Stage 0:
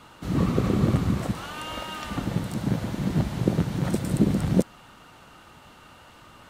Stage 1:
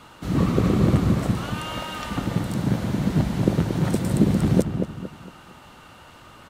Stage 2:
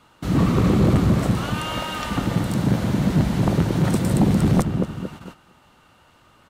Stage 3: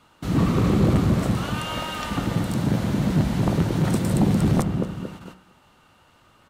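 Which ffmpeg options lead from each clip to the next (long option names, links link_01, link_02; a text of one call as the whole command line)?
ffmpeg -i in.wav -filter_complex "[0:a]asplit=2[link_01][link_02];[link_02]adelay=229,lowpass=frequency=1500:poles=1,volume=-6.5dB,asplit=2[link_03][link_04];[link_04]adelay=229,lowpass=frequency=1500:poles=1,volume=0.38,asplit=2[link_05][link_06];[link_06]adelay=229,lowpass=frequency=1500:poles=1,volume=0.38,asplit=2[link_07][link_08];[link_08]adelay=229,lowpass=frequency=1500:poles=1,volume=0.38[link_09];[link_01][link_03][link_05][link_07][link_09]amix=inputs=5:normalize=0,volume=2.5dB" out.wav
ffmpeg -i in.wav -af "aeval=exprs='0.75*sin(PI/2*2.51*val(0)/0.75)':channel_layout=same,agate=range=-12dB:threshold=-29dB:ratio=16:detection=peak,volume=-8dB" out.wav
ffmpeg -i in.wav -af "bandreject=frequency=62:width_type=h:width=4,bandreject=frequency=124:width_type=h:width=4,bandreject=frequency=186:width_type=h:width=4,bandreject=frequency=248:width_type=h:width=4,bandreject=frequency=310:width_type=h:width=4,bandreject=frequency=372:width_type=h:width=4,bandreject=frequency=434:width_type=h:width=4,bandreject=frequency=496:width_type=h:width=4,bandreject=frequency=558:width_type=h:width=4,bandreject=frequency=620:width_type=h:width=4,bandreject=frequency=682:width_type=h:width=4,bandreject=frequency=744:width_type=h:width=4,bandreject=frequency=806:width_type=h:width=4,bandreject=frequency=868:width_type=h:width=4,bandreject=frequency=930:width_type=h:width=4,bandreject=frequency=992:width_type=h:width=4,bandreject=frequency=1054:width_type=h:width=4,bandreject=frequency=1116:width_type=h:width=4,bandreject=frequency=1178:width_type=h:width=4,bandreject=frequency=1240:width_type=h:width=4,bandreject=frequency=1302:width_type=h:width=4,bandreject=frequency=1364:width_type=h:width=4,bandreject=frequency=1426:width_type=h:width=4,bandreject=frequency=1488:width_type=h:width=4,bandreject=frequency=1550:width_type=h:width=4,bandreject=frequency=1612:width_type=h:width=4,bandreject=frequency=1674:width_type=h:width=4,bandreject=frequency=1736:width_type=h:width=4,bandreject=frequency=1798:width_type=h:width=4,bandreject=frequency=1860:width_type=h:width=4,bandreject=frequency=1922:width_type=h:width=4,bandreject=frequency=1984:width_type=h:width=4,bandreject=frequency=2046:width_type=h:width=4,bandreject=frequency=2108:width_type=h:width=4,bandreject=frequency=2170:width_type=h:width=4,bandreject=frequency=2232:width_type=h:width=4,bandreject=frequency=2294:width_type=h:width=4,volume=-1.5dB" out.wav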